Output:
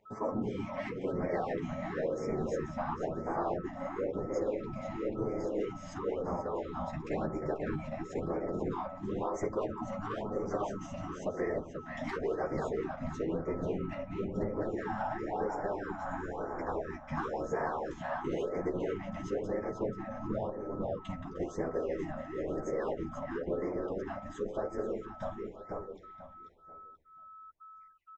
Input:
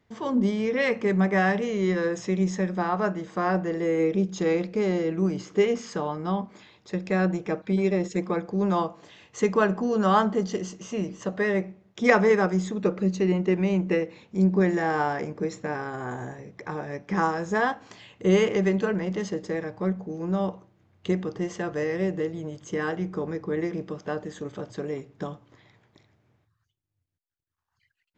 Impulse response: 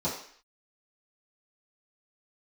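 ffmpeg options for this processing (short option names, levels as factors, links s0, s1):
-filter_complex "[0:a]bandreject=f=4500:w=5.2,asoftclip=type=tanh:threshold=0.133,equalizer=f=580:w=0.63:g=11.5,afftfilt=real='hypot(re,im)*cos(2*PI*random(0))':imag='hypot(re,im)*sin(2*PI*random(1))':win_size=512:overlap=0.75,asplit=2[s0][s1];[s1]adelay=488,lowpass=f=4200:p=1,volume=0.631,asplit=2[s2][s3];[s3]adelay=488,lowpass=f=4200:p=1,volume=0.3,asplit=2[s4][s5];[s5]adelay=488,lowpass=f=4200:p=1,volume=0.3,asplit=2[s6][s7];[s7]adelay=488,lowpass=f=4200:p=1,volume=0.3[s8];[s2][s4][s6][s8]amix=inputs=4:normalize=0[s9];[s0][s9]amix=inputs=2:normalize=0,acompressor=threshold=0.0447:ratio=5,asubboost=boost=3.5:cutoff=60,aeval=exprs='val(0)+0.00447*sin(2*PI*1300*n/s)':c=same,flanger=delay=9.2:depth=3.8:regen=-10:speed=0.2:shape=sinusoidal,afftfilt=real='re*(1-between(b*sr/1024,370*pow(3500/370,0.5+0.5*sin(2*PI*0.98*pts/sr))/1.41,370*pow(3500/370,0.5+0.5*sin(2*PI*0.98*pts/sr))*1.41))':imag='im*(1-between(b*sr/1024,370*pow(3500/370,0.5+0.5*sin(2*PI*0.98*pts/sr))/1.41,370*pow(3500/370,0.5+0.5*sin(2*PI*0.98*pts/sr))*1.41))':win_size=1024:overlap=0.75"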